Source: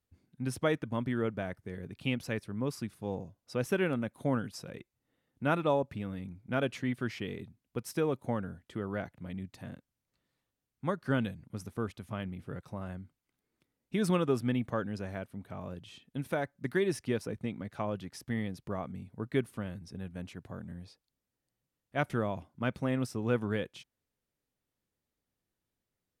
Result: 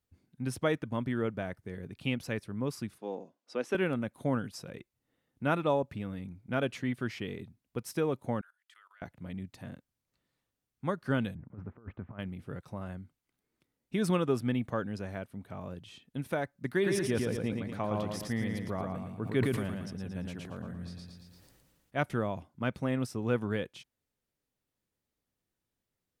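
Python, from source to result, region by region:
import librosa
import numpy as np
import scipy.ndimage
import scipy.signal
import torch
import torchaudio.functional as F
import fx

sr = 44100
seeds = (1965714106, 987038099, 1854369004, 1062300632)

y = fx.chain(x, sr, fx.highpass(hz=240.0, slope=24),
    fx.air_absorb(metres=63.0), at=(2.98, 3.75))
y = fx.chain(y, sr, fx.highpass(hz=1300.0, slope=24),
    fx.level_steps(step_db=20), at=(8.41, 9.02))
y = fx.chain(y, sr, fx.lowpass(hz=1700.0, slope=24),
    fx.over_compress(threshold_db=-42.0, ratio=-0.5), at=(11.35, 12.19))
y = fx.chain(y, sr, fx.echo_feedback(ms=114, feedback_pct=39, wet_db=-4.0),
    fx.sustainer(db_per_s=33.0), at=(16.72, 22.03))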